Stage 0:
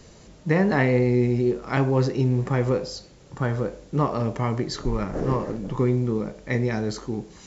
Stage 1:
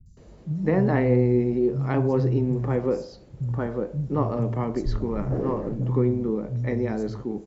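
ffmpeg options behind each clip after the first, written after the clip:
-filter_complex "[0:a]tiltshelf=f=1100:g=6.5,acrossover=split=160|5800[s0][s1][s2];[s2]adelay=60[s3];[s1]adelay=170[s4];[s0][s4][s3]amix=inputs=3:normalize=0,volume=0.596"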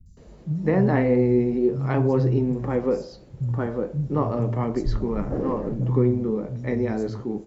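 -af "flanger=delay=3.7:depth=9.1:regen=-63:speed=0.37:shape=sinusoidal,volume=1.88"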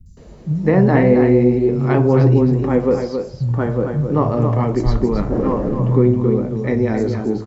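-af "aecho=1:1:269:0.473,volume=2.11"

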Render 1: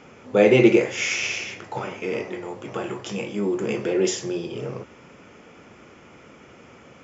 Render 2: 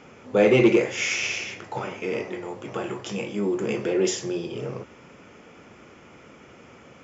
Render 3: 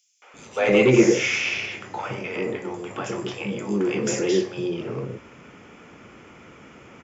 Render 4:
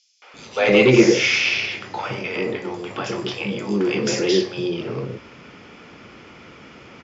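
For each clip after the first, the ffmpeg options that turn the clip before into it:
-af "acontrast=44,volume=0.473"
-filter_complex "[0:a]acrossover=split=560|5100[s0][s1][s2];[s1]adelay=220[s3];[s0]adelay=340[s4];[s4][s3][s2]amix=inputs=3:normalize=0,volume=1.41"
-af "lowpass=f=4600:t=q:w=2.8,volume=1.33"

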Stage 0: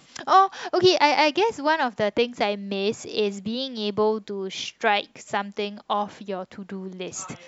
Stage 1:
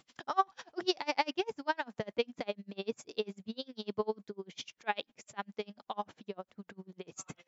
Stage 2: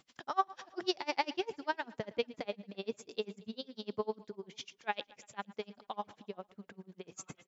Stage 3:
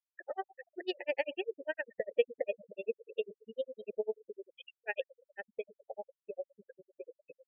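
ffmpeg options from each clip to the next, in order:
-af "aeval=exprs='val(0)*pow(10,-33*(0.5-0.5*cos(2*PI*10*n/s))/20)':c=same,volume=0.447"
-af "aecho=1:1:113|226|339|452:0.0891|0.0481|0.026|0.014,volume=0.794"
-filter_complex "[0:a]asplit=3[s0][s1][s2];[s0]bandpass=f=530:t=q:w=8,volume=1[s3];[s1]bandpass=f=1840:t=q:w=8,volume=0.501[s4];[s2]bandpass=f=2480:t=q:w=8,volume=0.355[s5];[s3][s4][s5]amix=inputs=3:normalize=0,afftfilt=real='re*gte(hypot(re,im),0.00355)':imag='im*gte(hypot(re,im),0.00355)':win_size=1024:overlap=0.75,volume=3.98"

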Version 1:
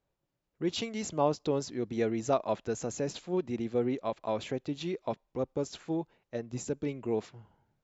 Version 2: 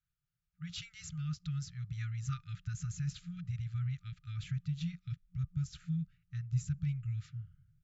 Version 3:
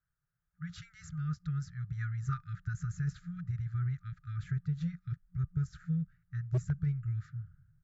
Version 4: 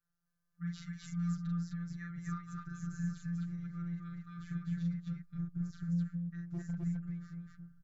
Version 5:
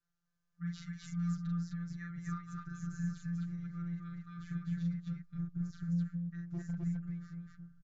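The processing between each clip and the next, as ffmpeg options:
-af "equalizer=f=1100:t=o:w=0.67:g=4.5,afftfilt=real='re*(1-between(b*sr/4096,180,1200))':imag='im*(1-between(b*sr/4096,180,1200))':win_size=4096:overlap=0.75,asubboost=boost=9:cutoff=240,volume=0.422"
-af "aeval=exprs='0.0668*(cos(1*acos(clip(val(0)/0.0668,-1,1)))-cos(1*PI/2))+0.00422*(cos(3*acos(clip(val(0)/0.0668,-1,1)))-cos(3*PI/2))':c=same,highshelf=f=2100:t=q:w=3:g=-8.5,aeval=exprs='0.0473*(abs(mod(val(0)/0.0473+3,4)-2)-1)':c=same,volume=1.58"
-filter_complex "[0:a]acompressor=threshold=0.02:ratio=6,afftfilt=real='hypot(re,im)*cos(PI*b)':imag='0':win_size=1024:overlap=0.75,asplit=2[s0][s1];[s1]aecho=0:1:40.82|259.5:0.794|0.891[s2];[s0][s2]amix=inputs=2:normalize=0"
-af "aresample=16000,aresample=44100"

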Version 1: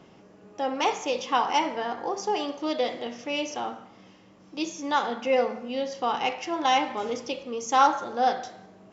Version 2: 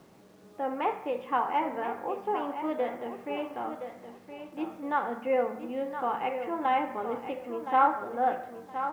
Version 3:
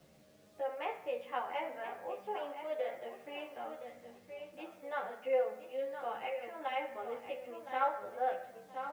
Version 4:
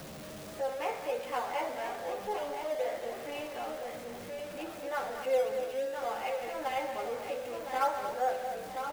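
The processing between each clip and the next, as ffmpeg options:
-af "lowpass=f=2100:w=0.5412,lowpass=f=2100:w=1.3066,acrusher=bits=9:mix=0:aa=0.000001,aecho=1:1:1018|2036|3054:0.335|0.0804|0.0193,volume=0.668"
-filter_complex "[0:a]acrossover=split=260|1400[s0][s1][s2];[s0]acompressor=threshold=0.00141:ratio=5[s3];[s1]bandpass=f=580:t=q:w=3.2:csg=0[s4];[s3][s4][s2]amix=inputs=3:normalize=0,asplit=2[s5][s6];[s6]adelay=11,afreqshift=0.33[s7];[s5][s7]amix=inputs=2:normalize=1"
-filter_complex "[0:a]aeval=exprs='val(0)+0.5*0.00794*sgn(val(0))':c=same,asplit=2[s0][s1];[s1]acrusher=samples=11:mix=1:aa=0.000001:lfo=1:lforange=11:lforate=3,volume=0.282[s2];[s0][s2]amix=inputs=2:normalize=0,aecho=1:1:230:0.355"

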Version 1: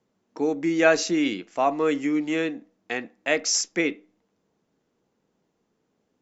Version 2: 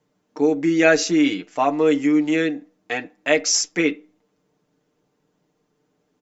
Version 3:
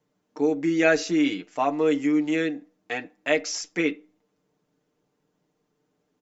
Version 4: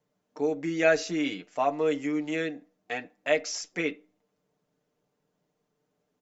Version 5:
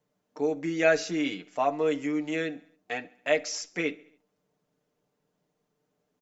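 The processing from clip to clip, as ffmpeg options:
-af "aecho=1:1:6.7:0.65,volume=1.33"
-filter_complex "[0:a]acrossover=split=4100[s0][s1];[s1]acompressor=threshold=0.0355:ratio=4:attack=1:release=60[s2];[s0][s2]amix=inputs=2:normalize=0,volume=0.596"
-af "superequalizer=6b=0.631:8b=1.41,volume=0.668"
-af "aecho=1:1:69|138|207|276:0.0668|0.0388|0.0225|0.013"

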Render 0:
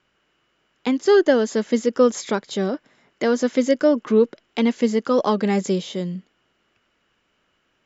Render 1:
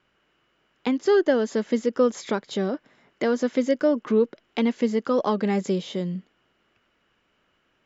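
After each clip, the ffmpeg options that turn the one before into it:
-filter_complex "[0:a]highshelf=f=6800:g=-11,asplit=2[s0][s1];[s1]acompressor=threshold=0.0562:ratio=6,volume=1[s2];[s0][s2]amix=inputs=2:normalize=0,volume=0.501"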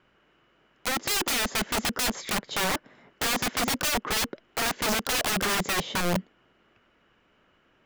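-af "highshelf=f=3300:g=-8,aeval=exprs='(mod(20*val(0)+1,2)-1)/20':c=same,volume=1.78"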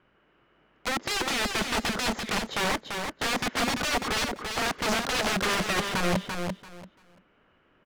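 -af "adynamicsmooth=sensitivity=2.5:basefreq=4100,aecho=1:1:340|680|1020:0.531|0.106|0.0212"

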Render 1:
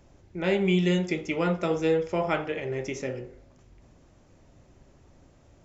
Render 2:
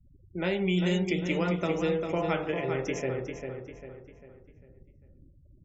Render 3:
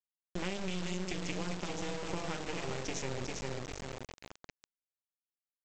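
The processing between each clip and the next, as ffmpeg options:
-filter_complex "[0:a]afftfilt=real='re*gte(hypot(re,im),0.00631)':imag='im*gte(hypot(re,im),0.00631)':win_size=1024:overlap=0.75,acrossover=split=140|3000[s0][s1][s2];[s1]acompressor=threshold=0.0501:ratio=6[s3];[s0][s3][s2]amix=inputs=3:normalize=0,asplit=2[s4][s5];[s5]adelay=398,lowpass=f=4100:p=1,volume=0.501,asplit=2[s6][s7];[s7]adelay=398,lowpass=f=4100:p=1,volume=0.44,asplit=2[s8][s9];[s9]adelay=398,lowpass=f=4100:p=1,volume=0.44,asplit=2[s10][s11];[s11]adelay=398,lowpass=f=4100:p=1,volume=0.44,asplit=2[s12][s13];[s13]adelay=398,lowpass=f=4100:p=1,volume=0.44[s14];[s4][s6][s8][s10][s12][s14]amix=inputs=6:normalize=0"
-af "bass=f=250:g=6,treble=f=4000:g=14,acompressor=threshold=0.0282:ratio=16,aresample=16000,acrusher=bits=4:dc=4:mix=0:aa=0.000001,aresample=44100,volume=1.12"

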